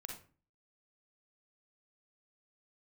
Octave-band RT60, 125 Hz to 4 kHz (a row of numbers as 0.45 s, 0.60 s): 0.50 s, 0.55 s, 0.40 s, 0.35 s, 0.35 s, 0.25 s